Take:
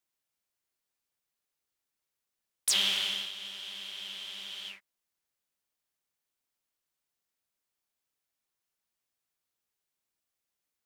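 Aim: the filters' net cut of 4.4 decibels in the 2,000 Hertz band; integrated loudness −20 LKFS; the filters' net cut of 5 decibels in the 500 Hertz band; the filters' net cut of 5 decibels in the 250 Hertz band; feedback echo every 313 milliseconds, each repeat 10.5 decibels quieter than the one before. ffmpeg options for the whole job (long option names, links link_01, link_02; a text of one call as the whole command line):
ffmpeg -i in.wav -af "equalizer=frequency=250:width_type=o:gain=-6.5,equalizer=frequency=500:width_type=o:gain=-4.5,equalizer=frequency=2000:width_type=o:gain=-6,aecho=1:1:313|626|939:0.299|0.0896|0.0269,volume=12.5dB" out.wav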